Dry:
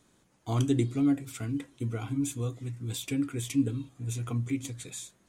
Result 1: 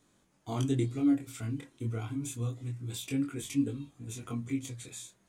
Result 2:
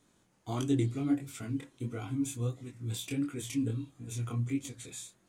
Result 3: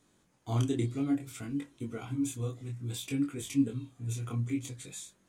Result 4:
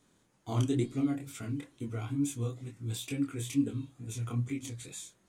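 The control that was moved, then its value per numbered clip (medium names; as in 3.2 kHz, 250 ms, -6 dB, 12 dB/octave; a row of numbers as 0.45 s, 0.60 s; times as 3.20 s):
chorus, rate: 0.26 Hz, 1.5 Hz, 0.59 Hz, 2.2 Hz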